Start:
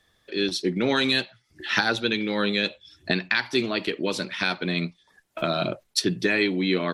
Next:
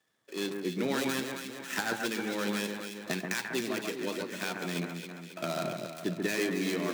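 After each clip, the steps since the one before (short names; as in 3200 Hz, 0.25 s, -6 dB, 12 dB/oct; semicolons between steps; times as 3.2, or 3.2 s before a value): switching dead time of 0.11 ms; HPF 130 Hz 24 dB/oct; on a send: echo with dull and thin repeats by turns 0.136 s, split 2000 Hz, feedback 72%, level -3.5 dB; on the sum: gain -8.5 dB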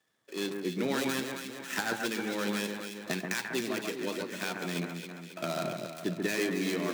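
nothing audible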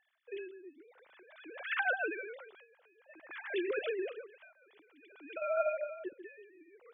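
sine-wave speech; recorder AGC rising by 14 dB/s; dB-linear tremolo 0.53 Hz, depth 30 dB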